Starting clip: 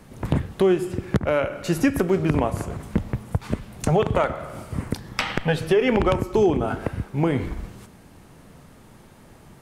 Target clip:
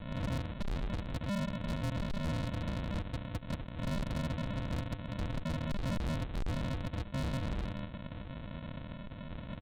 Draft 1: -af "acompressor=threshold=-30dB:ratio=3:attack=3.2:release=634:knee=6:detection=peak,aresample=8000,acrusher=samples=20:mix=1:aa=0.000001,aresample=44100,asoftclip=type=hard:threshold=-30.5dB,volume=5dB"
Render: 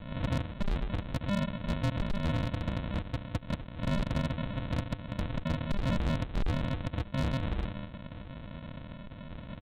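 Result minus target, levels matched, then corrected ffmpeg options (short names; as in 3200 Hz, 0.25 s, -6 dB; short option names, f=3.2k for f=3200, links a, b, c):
hard clip: distortion -5 dB
-af "acompressor=threshold=-30dB:ratio=3:attack=3.2:release=634:knee=6:detection=peak,aresample=8000,acrusher=samples=20:mix=1:aa=0.000001,aresample=44100,asoftclip=type=hard:threshold=-37dB,volume=5dB"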